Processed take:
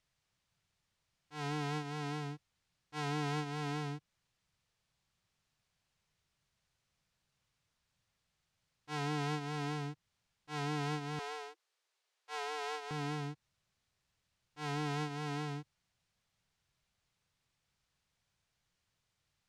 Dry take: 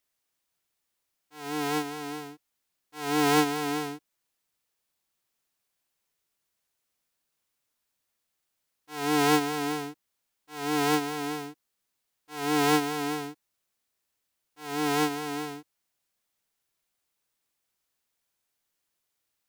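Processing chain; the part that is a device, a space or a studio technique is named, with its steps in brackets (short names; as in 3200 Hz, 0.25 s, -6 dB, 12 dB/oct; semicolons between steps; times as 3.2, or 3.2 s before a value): jukebox (LPF 5900 Hz 12 dB/oct; resonant low shelf 200 Hz +10.5 dB, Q 1.5; compressor 5:1, threshold -36 dBFS, peak gain reduction 18.5 dB); 11.19–12.91 steep high-pass 350 Hz 96 dB/oct; gain +2 dB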